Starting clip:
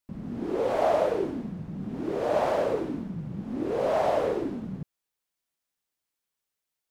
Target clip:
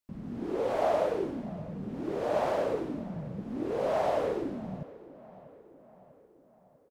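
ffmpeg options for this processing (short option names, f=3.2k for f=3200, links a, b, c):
-filter_complex "[0:a]asplit=2[a][b];[b]adelay=644,lowpass=f=2.7k:p=1,volume=-18.5dB,asplit=2[c][d];[d]adelay=644,lowpass=f=2.7k:p=1,volume=0.55,asplit=2[e][f];[f]adelay=644,lowpass=f=2.7k:p=1,volume=0.55,asplit=2[g][h];[h]adelay=644,lowpass=f=2.7k:p=1,volume=0.55,asplit=2[i][j];[j]adelay=644,lowpass=f=2.7k:p=1,volume=0.55[k];[a][c][e][g][i][k]amix=inputs=6:normalize=0,volume=-3.5dB"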